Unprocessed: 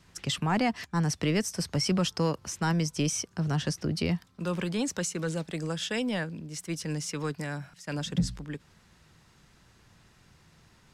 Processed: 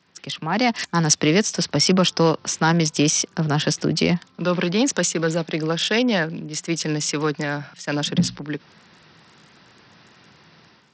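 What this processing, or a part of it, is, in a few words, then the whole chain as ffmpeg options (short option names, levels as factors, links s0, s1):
Bluetooth headset: -filter_complex "[0:a]asettb=1/sr,asplit=3[s0][s1][s2];[s0]atrim=end=0.524[s3];[s1]atrim=start=0.52:end=1.15,asetpts=PTS-STARTPTS,afade=t=in:d=0.004:c=qsin,afade=t=out:st=0.626:d=0.004:c=qsin,aemphasis=mode=production:type=50kf[s4];[s2]atrim=start=1.146[s5];[s3][s4]acrossfade=d=0.004:c1=hsin:c2=qsin[s6];[s6][s5]acrossfade=d=0.004:c1=qsin:c2=hsin,highpass=190,dynaudnorm=f=410:g=3:m=3.76,aresample=16000,aresample=44100" -ar 44100 -c:a sbc -b:a 64k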